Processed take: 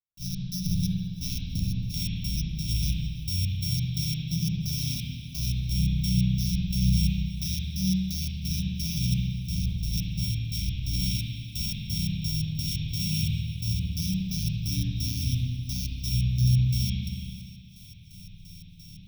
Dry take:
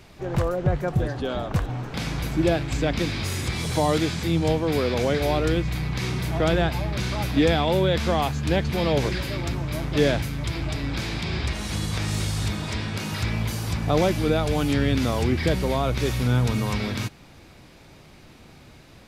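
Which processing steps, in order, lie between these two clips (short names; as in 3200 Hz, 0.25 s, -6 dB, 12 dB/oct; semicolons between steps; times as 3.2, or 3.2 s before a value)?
sample sorter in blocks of 8 samples; Chebyshev band-stop 190–2800 Hz, order 4; high shelf 11000 Hz +11.5 dB; compressor, threshold -23 dBFS, peak gain reduction 6.5 dB; limiter -20 dBFS, peak gain reduction 8.5 dB; step gate ".x.xx..x.x.x" 87 bpm -60 dB; ripple EQ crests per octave 1.6, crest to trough 9 dB; on a send: thinning echo 0.332 s, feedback 73%, level -21 dB; on the sum: spring tank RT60 2 s, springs 32/53 ms, chirp 65 ms, DRR -5.5 dB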